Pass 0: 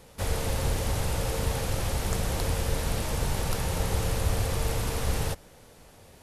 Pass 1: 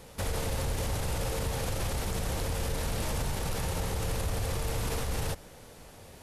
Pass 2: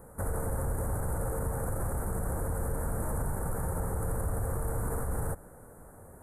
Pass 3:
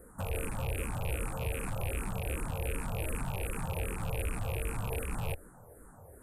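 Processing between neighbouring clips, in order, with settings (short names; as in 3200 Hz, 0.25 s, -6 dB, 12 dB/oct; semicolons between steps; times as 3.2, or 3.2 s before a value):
limiter -25.5 dBFS, peak gain reduction 11 dB; gain +2.5 dB
elliptic band-stop 1500–8700 Hz, stop band 80 dB
rattling part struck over -34 dBFS, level -28 dBFS; endless phaser -2.6 Hz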